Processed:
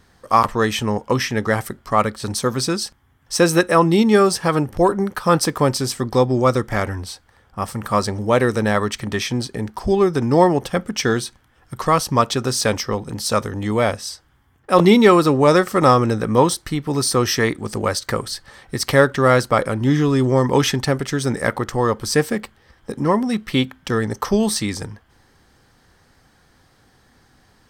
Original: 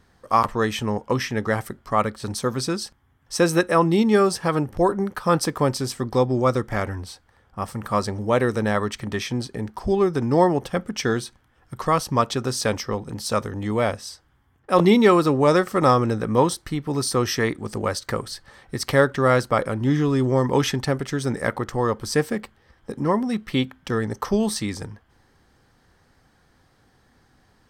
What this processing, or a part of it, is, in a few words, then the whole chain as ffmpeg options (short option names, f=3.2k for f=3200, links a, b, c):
exciter from parts: -filter_complex "[0:a]asplit=2[a][b];[b]highpass=f=3.1k:p=1,asoftclip=type=tanh:threshold=-28dB,volume=-4.5dB[c];[a][c]amix=inputs=2:normalize=0,volume=3.5dB"